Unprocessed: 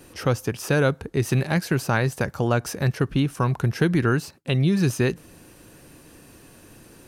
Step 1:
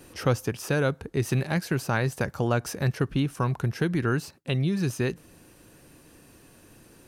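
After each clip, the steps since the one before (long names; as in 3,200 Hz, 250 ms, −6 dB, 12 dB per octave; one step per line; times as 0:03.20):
speech leveller 0.5 s
level −4 dB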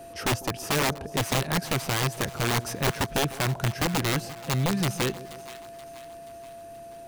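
steady tone 680 Hz −42 dBFS
wrap-around overflow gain 19 dB
echo with a time of its own for lows and highs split 800 Hz, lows 151 ms, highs 479 ms, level −15.5 dB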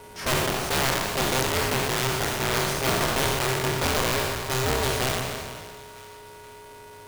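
peak hold with a decay on every bin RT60 2.01 s
ring modulator with a square carrier 260 Hz
level −2.5 dB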